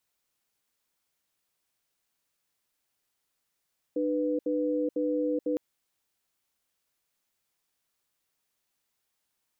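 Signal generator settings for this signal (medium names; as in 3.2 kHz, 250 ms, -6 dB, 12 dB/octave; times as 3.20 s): cadence 301 Hz, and 495 Hz, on 0.43 s, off 0.07 s, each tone -28 dBFS 1.61 s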